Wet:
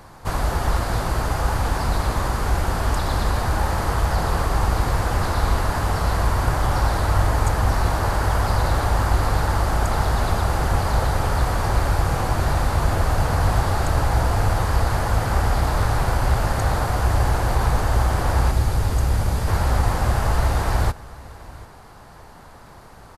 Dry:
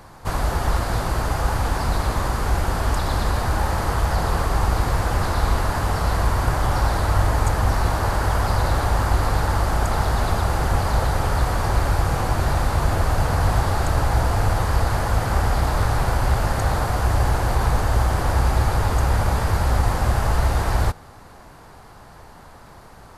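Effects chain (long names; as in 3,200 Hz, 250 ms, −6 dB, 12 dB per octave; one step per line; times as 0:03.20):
0:18.51–0:19.48: parametric band 1,100 Hz −6.5 dB 2.6 octaves
on a send: single-tap delay 738 ms −21 dB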